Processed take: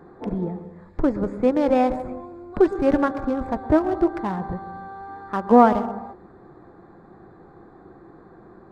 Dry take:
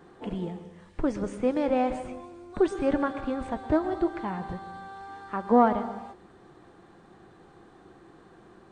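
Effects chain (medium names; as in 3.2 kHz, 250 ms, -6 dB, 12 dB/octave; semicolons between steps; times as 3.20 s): local Wiener filter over 15 samples; trim +6.5 dB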